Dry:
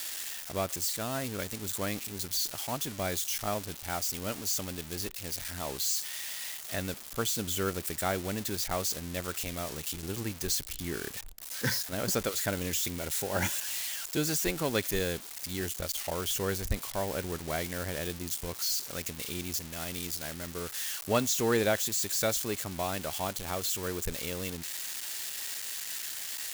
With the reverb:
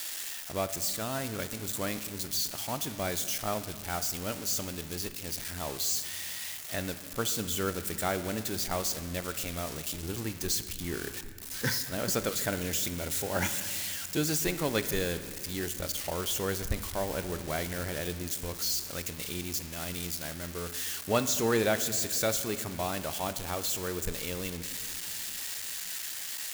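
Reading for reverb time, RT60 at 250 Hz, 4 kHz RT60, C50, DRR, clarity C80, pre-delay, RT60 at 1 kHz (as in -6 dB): 2.3 s, 3.5 s, 1.7 s, 11.0 dB, 10.0 dB, 12.5 dB, 3 ms, 2.1 s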